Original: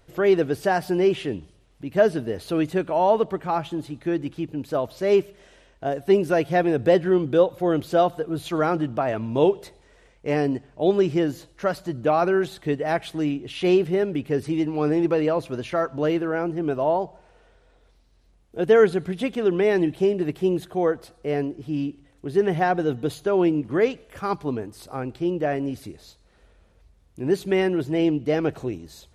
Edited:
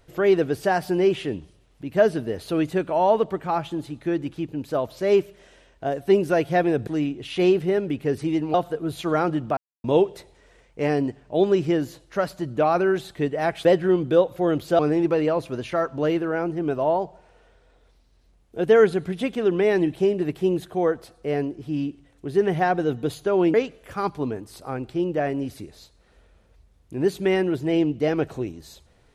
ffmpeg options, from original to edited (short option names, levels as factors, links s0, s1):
-filter_complex "[0:a]asplit=8[s0][s1][s2][s3][s4][s5][s6][s7];[s0]atrim=end=6.872[s8];[s1]atrim=start=13.118:end=14.792[s9];[s2]atrim=start=8.008:end=9.04,asetpts=PTS-STARTPTS,afade=t=out:st=1.028:d=0.004:c=hsin[s10];[s3]atrim=start=9.04:end=9.31,asetpts=PTS-STARTPTS,volume=0[s11];[s4]atrim=start=9.31:end=13.122,asetpts=PTS-STARTPTS,afade=t=in:d=0.004:c=hsin[s12];[s5]atrim=start=6.868:end=8.012[s13];[s6]atrim=start=14.788:end=23.542[s14];[s7]atrim=start=23.798[s15];[s8][s9]acrossfade=d=0.004:c1=hsin:c2=hsin[s16];[s10][s11][s12]concat=n=3:v=0:a=1[s17];[s16][s17]acrossfade=d=0.004:c1=hsin:c2=hsin[s18];[s18][s13]acrossfade=d=0.004:c1=hsin:c2=hsin[s19];[s19][s14]acrossfade=d=0.004:c1=hsin:c2=hsin[s20];[s20][s15]acrossfade=d=0.004:c1=hsin:c2=hsin"